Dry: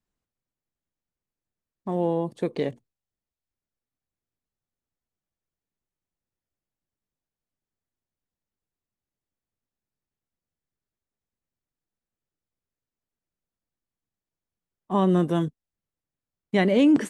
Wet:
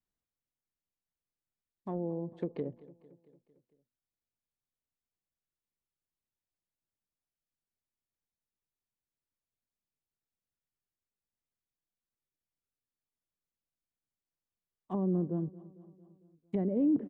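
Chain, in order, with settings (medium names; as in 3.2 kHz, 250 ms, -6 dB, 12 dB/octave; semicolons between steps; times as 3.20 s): low-pass that closes with the level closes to 430 Hz, closed at -21.5 dBFS; feedback delay 226 ms, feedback 60%, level -20 dB; trim -8.5 dB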